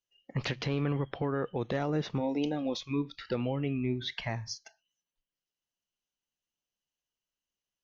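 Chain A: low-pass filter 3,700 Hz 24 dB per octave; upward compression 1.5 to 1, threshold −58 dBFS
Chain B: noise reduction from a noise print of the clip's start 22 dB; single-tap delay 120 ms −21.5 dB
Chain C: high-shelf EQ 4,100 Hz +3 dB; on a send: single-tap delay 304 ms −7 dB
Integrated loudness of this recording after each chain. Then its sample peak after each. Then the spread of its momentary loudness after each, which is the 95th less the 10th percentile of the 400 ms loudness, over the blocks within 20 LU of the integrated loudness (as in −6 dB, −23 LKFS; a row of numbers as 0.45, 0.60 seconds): −33.5, −34.5, −32.5 LKFS; −20.5, −20.5, −18.0 dBFS; 6, 7, 8 LU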